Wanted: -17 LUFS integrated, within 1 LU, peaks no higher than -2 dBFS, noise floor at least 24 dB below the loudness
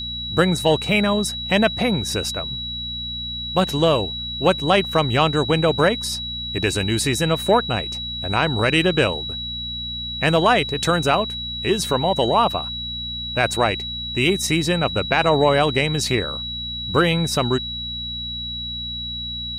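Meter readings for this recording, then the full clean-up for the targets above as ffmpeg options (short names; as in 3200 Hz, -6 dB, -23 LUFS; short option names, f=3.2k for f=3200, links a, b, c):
hum 60 Hz; harmonics up to 240 Hz; hum level -33 dBFS; steady tone 3900 Hz; tone level -27 dBFS; loudness -20.5 LUFS; peak -3.0 dBFS; loudness target -17.0 LUFS
-> -af "bandreject=f=60:t=h:w=4,bandreject=f=120:t=h:w=4,bandreject=f=180:t=h:w=4,bandreject=f=240:t=h:w=4"
-af "bandreject=f=3.9k:w=30"
-af "volume=3.5dB,alimiter=limit=-2dB:level=0:latency=1"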